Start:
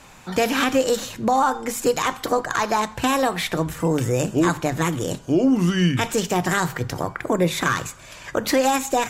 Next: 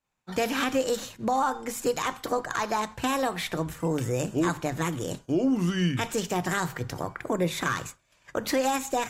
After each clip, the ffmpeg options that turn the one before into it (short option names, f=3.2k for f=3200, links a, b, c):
-af "agate=range=-33dB:threshold=-29dB:ratio=3:detection=peak,volume=-6.5dB"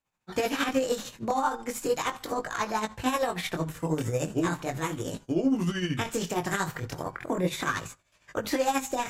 -af "flanger=delay=18:depth=7.9:speed=0.37,tremolo=f=13:d=0.55,volume=4dB"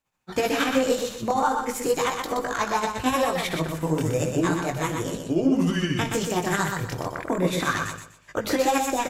-af "aecho=1:1:123|246|369|492:0.562|0.152|0.041|0.0111,volume=3.5dB"